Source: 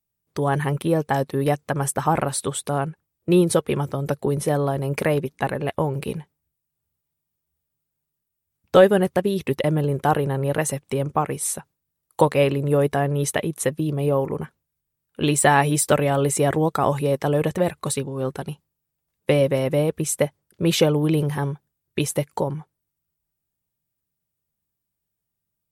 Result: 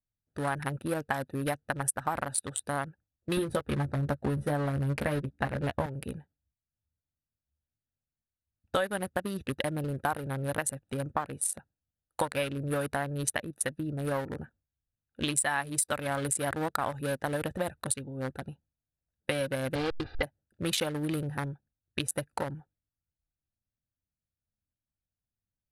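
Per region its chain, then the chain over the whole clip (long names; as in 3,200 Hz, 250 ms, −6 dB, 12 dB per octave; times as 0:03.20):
0:03.37–0:05.86: spectral tilt −2 dB per octave + double-tracking delay 14 ms −4.5 dB
0:19.75–0:20.23: hold until the input has moved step −26.5 dBFS + Butterworth low-pass 4,900 Hz 96 dB per octave + comb filter 2.5 ms, depth 98%
whole clip: adaptive Wiener filter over 41 samples; graphic EQ with 15 bands 160 Hz −10 dB, 400 Hz −11 dB, 1,600 Hz +6 dB, 4,000 Hz +5 dB, 10,000 Hz +11 dB; downward compressor 5 to 1, threshold −25 dBFS; level −1.5 dB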